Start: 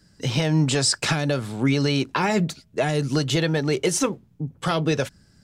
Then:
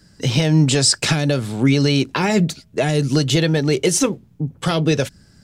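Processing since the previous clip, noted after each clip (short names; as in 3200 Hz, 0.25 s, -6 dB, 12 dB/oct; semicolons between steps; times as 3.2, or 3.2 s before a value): dynamic EQ 1100 Hz, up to -6 dB, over -38 dBFS, Q 0.83; gain +6 dB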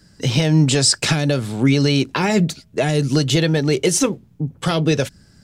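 nothing audible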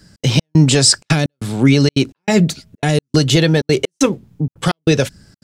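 step gate "xx.xx..xxxx" 191 bpm -60 dB; gain +4 dB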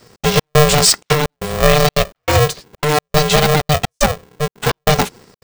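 polarity switched at an audio rate 300 Hz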